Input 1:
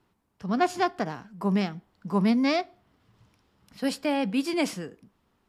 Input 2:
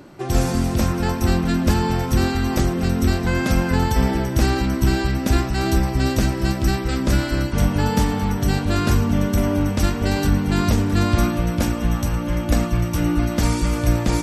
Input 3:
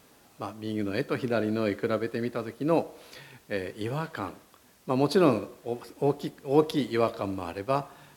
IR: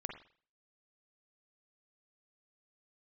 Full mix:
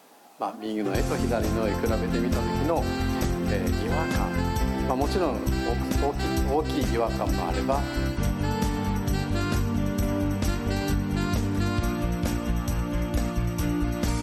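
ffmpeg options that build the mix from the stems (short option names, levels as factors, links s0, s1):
-filter_complex "[0:a]alimiter=limit=0.141:level=0:latency=1,volume=0.126[s0];[1:a]adelay=650,volume=0.631[s1];[2:a]highpass=f=190:w=0.5412,highpass=f=190:w=1.3066,equalizer=f=780:t=o:w=0.62:g=9.5,volume=1.33[s2];[s0][s1][s2]amix=inputs=3:normalize=0,acompressor=threshold=0.0891:ratio=6"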